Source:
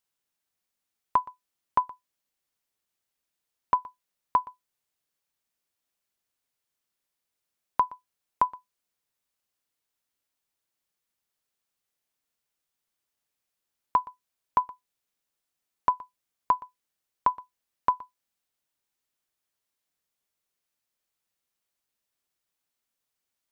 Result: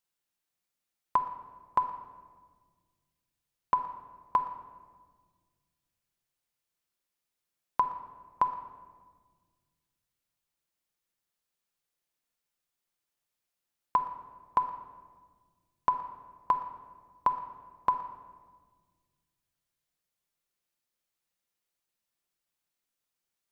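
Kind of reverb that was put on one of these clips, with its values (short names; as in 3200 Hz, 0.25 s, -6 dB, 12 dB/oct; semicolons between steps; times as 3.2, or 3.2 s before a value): shoebox room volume 1600 m³, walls mixed, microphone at 0.85 m; gain -3 dB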